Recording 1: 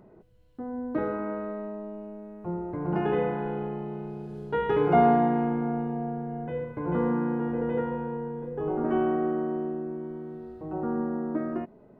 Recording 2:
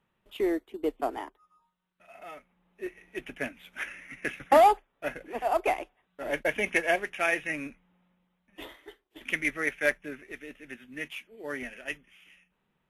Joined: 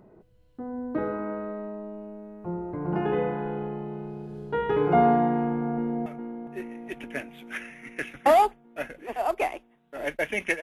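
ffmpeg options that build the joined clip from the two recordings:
-filter_complex "[0:a]apad=whole_dur=10.62,atrim=end=10.62,atrim=end=6.062[a];[1:a]atrim=start=2.318:end=6.88[b];[a][b]acrossfade=d=0.004:c1=hsin:c2=hsin,asplit=2[c][d];[d]afade=t=in:st=5.36:d=0.01,afade=t=out:st=6.06:d=0.01,aecho=0:1:410|820|1230|1640|2050|2460|2870|3280|3690|4100:0.281838|0.197287|0.138101|0.0966705|0.0676694|0.0473686|0.033158|0.0232106|0.0162474|0.0113732[e];[c][e]amix=inputs=2:normalize=0"

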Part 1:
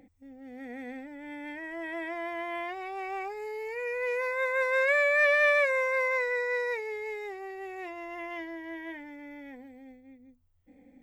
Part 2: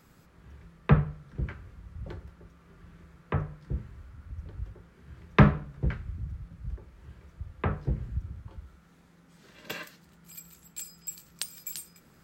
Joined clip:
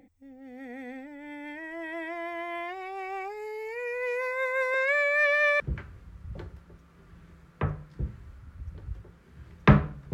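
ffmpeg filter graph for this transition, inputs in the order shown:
-filter_complex "[0:a]asettb=1/sr,asplit=3[a][b][c];[a]atrim=end=4.744[d];[b]atrim=start=4.74:end=5.6,asetpts=PTS-STARTPTS,afade=t=in:d=0.004:c=qsin,afade=t=out:st=0.856:d=0.004:c=qsin,highpass=490,lowpass=7.7k[e];[c]atrim=start=5.596[f];[d][e]acrossfade=d=0.004:c1=hsin:c2=qsin[g];[g][f]acrossfade=d=0.004:c1=qsin:c2=hsin,apad=whole_dur=10.13,atrim=end=10.13,atrim=end=5.602[h];[1:a]atrim=start=1.308:end=5.84[i];[h][i]acrossfade=d=0.004:c1=hsin:c2=hsin"

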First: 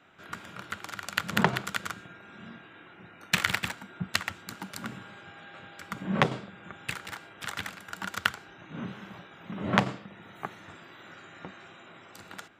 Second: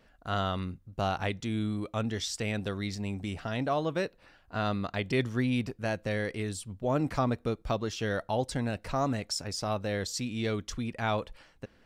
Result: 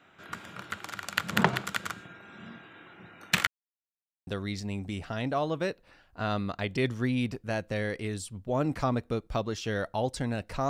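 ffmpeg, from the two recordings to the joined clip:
-filter_complex "[0:a]apad=whole_dur=10.69,atrim=end=10.69,asplit=2[a][b];[a]atrim=end=3.47,asetpts=PTS-STARTPTS,afade=t=out:st=3.466:d=0.004:c=hsin[c];[b]atrim=start=3.47:end=4.27,asetpts=PTS-STARTPTS,volume=0[d];[1:a]atrim=start=2.62:end=9.04,asetpts=PTS-STARTPTS,afade=t=in:d=0.004:c=hsin[e];[c][d][e]concat=n=3:v=0:a=1"

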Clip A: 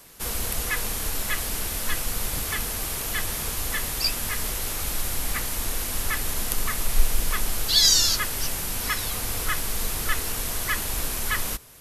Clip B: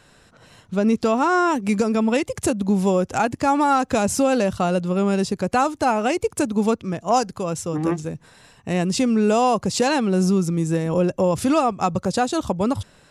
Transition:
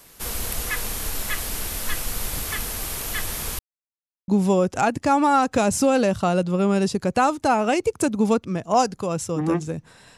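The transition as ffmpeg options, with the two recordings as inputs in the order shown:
-filter_complex "[0:a]apad=whole_dur=10.17,atrim=end=10.17,asplit=2[a][b];[a]atrim=end=3.59,asetpts=PTS-STARTPTS,afade=t=out:st=3.586:d=0.004:c=hsin[c];[b]atrim=start=3.59:end=4.28,asetpts=PTS-STARTPTS,volume=0[d];[1:a]atrim=start=2.65:end=8.54,asetpts=PTS-STARTPTS,afade=t=in:d=0.004:c=hsin[e];[c][d][e]concat=n=3:v=0:a=1"

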